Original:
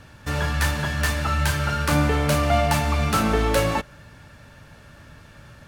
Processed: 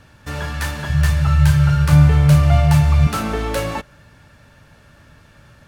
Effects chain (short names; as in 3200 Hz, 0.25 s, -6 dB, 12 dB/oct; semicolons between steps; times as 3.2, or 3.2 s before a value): 0.89–3.07 resonant low shelf 190 Hz +9.5 dB, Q 3; gain -1.5 dB